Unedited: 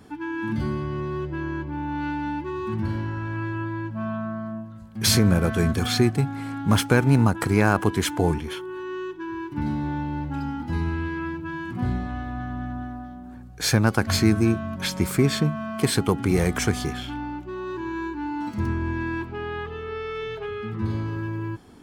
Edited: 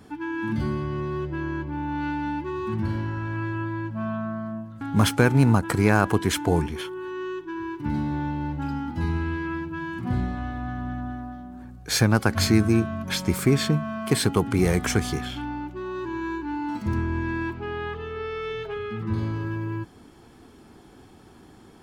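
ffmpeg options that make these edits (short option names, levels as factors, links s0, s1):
-filter_complex "[0:a]asplit=2[s0][s1];[s0]atrim=end=4.812[s2];[s1]atrim=start=6.528[s3];[s2][s3]acrossfade=d=0.004:c1=hsin:c2=hsin"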